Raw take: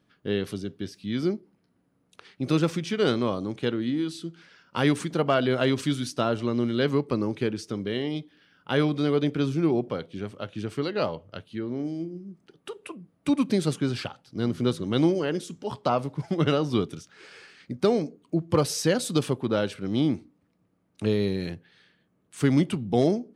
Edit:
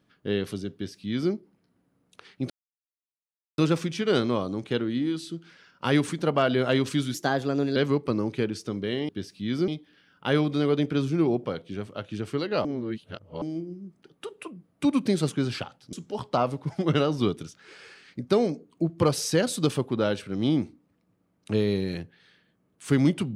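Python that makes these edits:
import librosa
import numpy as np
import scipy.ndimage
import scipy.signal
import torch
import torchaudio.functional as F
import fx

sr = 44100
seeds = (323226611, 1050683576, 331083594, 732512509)

y = fx.edit(x, sr, fx.duplicate(start_s=0.73, length_s=0.59, to_s=8.12),
    fx.insert_silence(at_s=2.5, length_s=1.08),
    fx.speed_span(start_s=6.06, length_s=0.73, speed=1.18),
    fx.reverse_span(start_s=11.09, length_s=0.77),
    fx.cut(start_s=14.37, length_s=1.08), tone=tone)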